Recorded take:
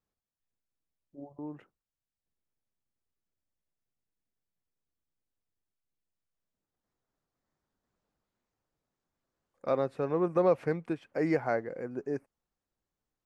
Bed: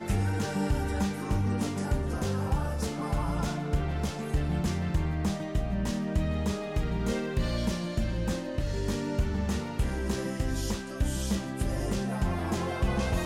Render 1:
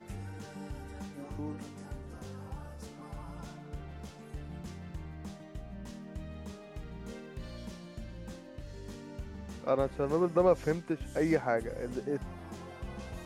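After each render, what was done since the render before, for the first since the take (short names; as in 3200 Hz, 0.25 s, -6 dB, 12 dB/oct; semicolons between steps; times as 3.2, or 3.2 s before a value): add bed -14.5 dB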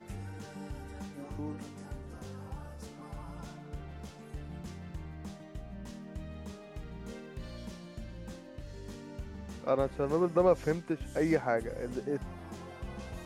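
nothing audible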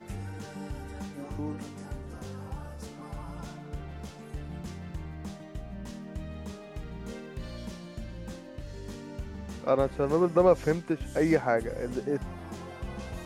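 gain +4 dB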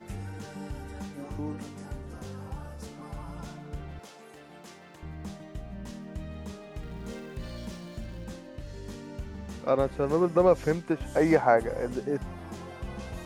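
3.99–5.03 HPF 390 Hz; 6.83–8.24 zero-crossing step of -52 dBFS; 10.9–11.88 bell 860 Hz +8 dB 1.3 oct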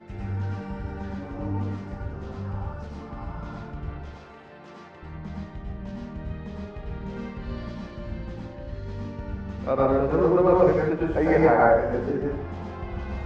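air absorption 200 m; plate-style reverb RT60 0.71 s, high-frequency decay 0.5×, pre-delay 85 ms, DRR -4.5 dB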